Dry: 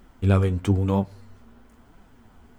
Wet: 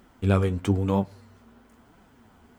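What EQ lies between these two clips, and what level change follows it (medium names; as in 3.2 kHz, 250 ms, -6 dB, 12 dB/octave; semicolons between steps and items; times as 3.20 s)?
high-pass 110 Hz 6 dB/octave; 0.0 dB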